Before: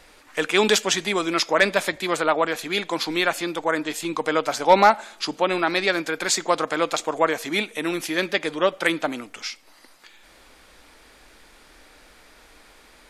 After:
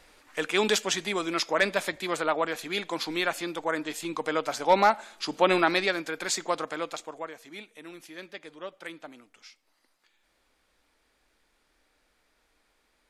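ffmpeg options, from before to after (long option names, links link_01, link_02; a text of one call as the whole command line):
ffmpeg -i in.wav -af "volume=1dB,afade=type=in:start_time=5.24:duration=0.27:silence=0.446684,afade=type=out:start_time=5.51:duration=0.45:silence=0.398107,afade=type=out:start_time=6.48:duration=0.82:silence=0.251189" out.wav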